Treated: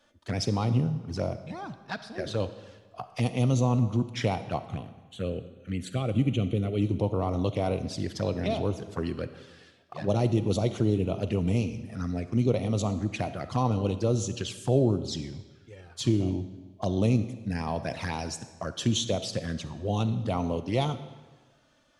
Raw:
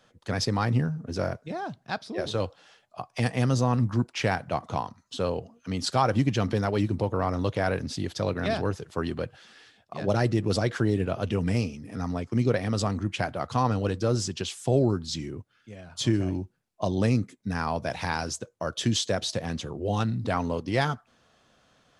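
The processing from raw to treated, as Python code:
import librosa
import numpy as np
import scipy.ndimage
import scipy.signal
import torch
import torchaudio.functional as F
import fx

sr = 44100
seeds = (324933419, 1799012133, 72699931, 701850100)

y = fx.env_flanger(x, sr, rest_ms=3.5, full_db=-24.0)
y = fx.fixed_phaser(y, sr, hz=2200.0, stages=4, at=(4.61, 6.82))
y = fx.rev_freeverb(y, sr, rt60_s=1.3, hf_ratio=0.9, predelay_ms=10, drr_db=11.5)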